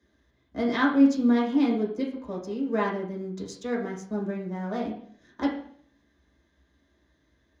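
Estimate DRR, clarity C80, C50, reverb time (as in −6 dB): −4.0 dB, 10.5 dB, 5.5 dB, 0.55 s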